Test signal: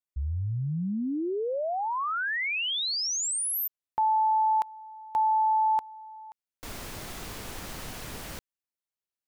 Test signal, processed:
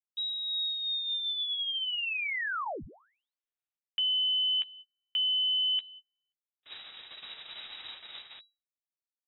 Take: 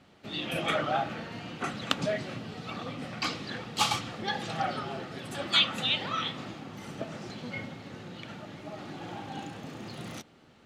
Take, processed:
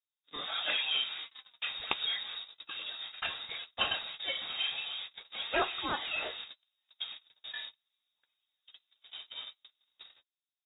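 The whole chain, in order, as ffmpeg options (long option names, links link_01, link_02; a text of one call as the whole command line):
ffmpeg -i in.wav -filter_complex "[0:a]agate=range=-38dB:threshold=-36dB:ratio=16:release=247:detection=rms,lowpass=frequency=3300:width_type=q:width=0.5098,lowpass=frequency=3300:width_type=q:width=0.6013,lowpass=frequency=3300:width_type=q:width=0.9,lowpass=frequency=3300:width_type=q:width=2.563,afreqshift=-3900,bandreject=frequency=1000:width=20,asplit=2[link_01][link_02];[link_02]adelay=13,volume=-12dB[link_03];[link_01][link_03]amix=inputs=2:normalize=0,volume=-3.5dB" out.wav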